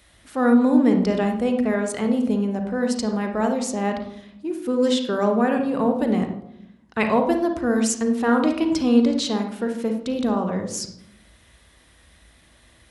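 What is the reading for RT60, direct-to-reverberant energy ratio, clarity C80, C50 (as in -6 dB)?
0.70 s, 4.5 dB, 10.0 dB, 6.0 dB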